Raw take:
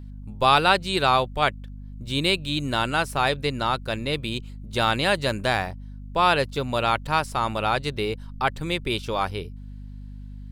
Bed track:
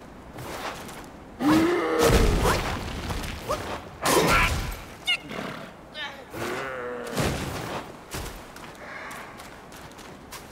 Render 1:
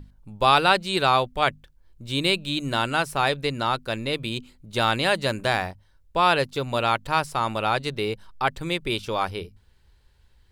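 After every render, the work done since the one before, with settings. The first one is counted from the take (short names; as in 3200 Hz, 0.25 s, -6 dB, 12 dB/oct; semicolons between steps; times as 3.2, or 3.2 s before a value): notches 50/100/150/200/250 Hz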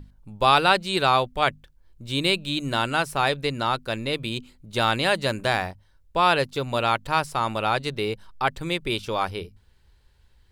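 nothing audible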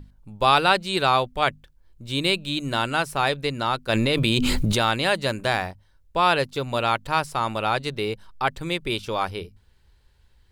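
3.89–4.82 fast leveller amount 100%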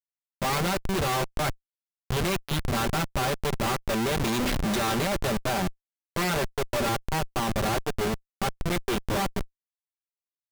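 minimum comb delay 5.1 ms; Schmitt trigger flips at -26.5 dBFS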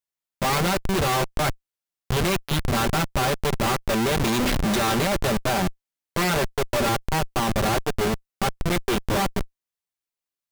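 gain +4 dB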